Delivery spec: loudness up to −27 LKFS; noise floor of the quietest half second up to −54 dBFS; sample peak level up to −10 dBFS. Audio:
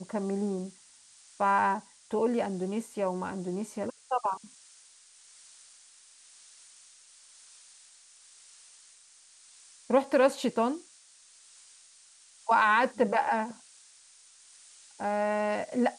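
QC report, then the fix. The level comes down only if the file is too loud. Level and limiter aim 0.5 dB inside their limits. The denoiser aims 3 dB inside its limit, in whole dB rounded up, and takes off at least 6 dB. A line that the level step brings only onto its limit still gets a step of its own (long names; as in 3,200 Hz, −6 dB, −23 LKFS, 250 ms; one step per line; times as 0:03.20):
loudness −29.0 LKFS: in spec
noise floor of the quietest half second −58 dBFS: in spec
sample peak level −12.5 dBFS: in spec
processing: no processing needed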